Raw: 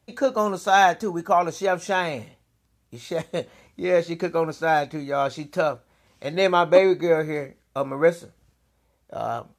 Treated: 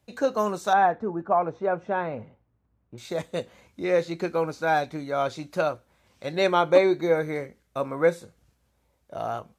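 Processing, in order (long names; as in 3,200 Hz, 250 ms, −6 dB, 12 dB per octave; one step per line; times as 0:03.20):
0:00.73–0:02.98: low-pass filter 1,300 Hz 12 dB per octave
level −2.5 dB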